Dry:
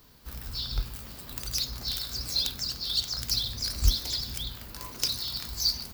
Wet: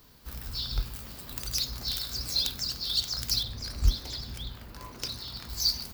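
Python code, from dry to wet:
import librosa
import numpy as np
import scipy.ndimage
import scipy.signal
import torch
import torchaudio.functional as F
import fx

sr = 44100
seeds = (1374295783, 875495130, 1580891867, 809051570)

y = fx.high_shelf(x, sr, hz=3500.0, db=-11.0, at=(3.43, 5.5))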